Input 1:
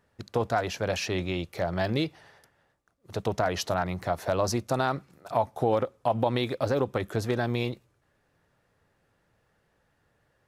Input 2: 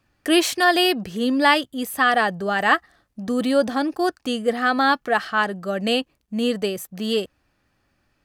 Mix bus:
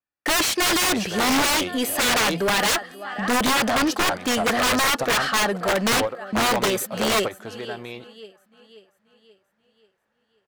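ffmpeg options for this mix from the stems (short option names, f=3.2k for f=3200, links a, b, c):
-filter_complex "[0:a]adelay=300,volume=-3dB[a];[1:a]agate=range=-37dB:threshold=-39dB:ratio=16:detection=peak,volume=1.5dB,asplit=3[b][c][d];[c]volume=-23.5dB[e];[d]apad=whole_len=475133[f];[a][f]sidechaingate=range=-10dB:threshold=-27dB:ratio=16:detection=peak[g];[e]aecho=0:1:533|1066|1599|2132|2665|3198|3731:1|0.47|0.221|0.104|0.0488|0.0229|0.0108[h];[g][b][h]amix=inputs=3:normalize=0,aeval=exprs='(mod(5.62*val(0)+1,2)-1)/5.62':c=same,asplit=2[i][j];[j]highpass=f=720:p=1,volume=18dB,asoftclip=type=tanh:threshold=-14.5dB[k];[i][k]amix=inputs=2:normalize=0,lowpass=f=3k:p=1,volume=-6dB,adynamicequalizer=threshold=0.0112:dfrequency=5400:dqfactor=0.7:tfrequency=5400:tqfactor=0.7:attack=5:release=100:ratio=0.375:range=3:mode=boostabove:tftype=highshelf"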